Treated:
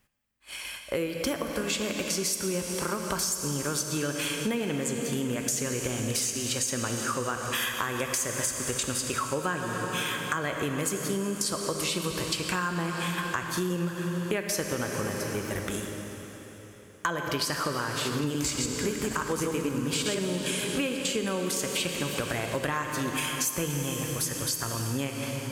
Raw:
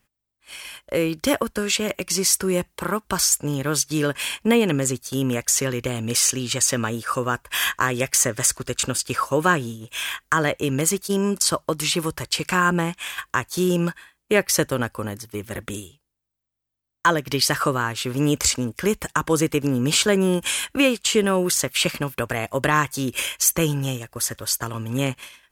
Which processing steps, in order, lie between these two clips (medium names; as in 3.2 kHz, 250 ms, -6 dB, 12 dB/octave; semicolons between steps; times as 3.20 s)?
17.92–20.19 s: chunks repeated in reverse 106 ms, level -2 dB; reverberation RT60 4.3 s, pre-delay 5 ms, DRR 4 dB; compression, threshold -25 dBFS, peak gain reduction 13 dB; trim -1.5 dB